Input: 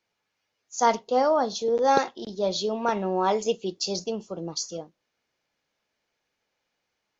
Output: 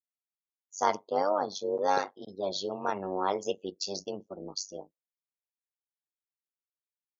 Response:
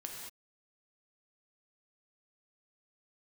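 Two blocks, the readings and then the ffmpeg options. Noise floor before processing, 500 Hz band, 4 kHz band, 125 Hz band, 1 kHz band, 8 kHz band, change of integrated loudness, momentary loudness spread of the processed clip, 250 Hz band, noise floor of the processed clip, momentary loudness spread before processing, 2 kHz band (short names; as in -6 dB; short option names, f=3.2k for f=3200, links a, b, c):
-80 dBFS, -6.5 dB, -6.0 dB, -9.0 dB, -6.0 dB, n/a, -6.5 dB, 12 LU, -8.5 dB, under -85 dBFS, 11 LU, -5.5 dB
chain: -af "afftdn=nr=34:nf=-41,tremolo=f=97:d=0.889,highpass=f=270:p=1,volume=-1.5dB"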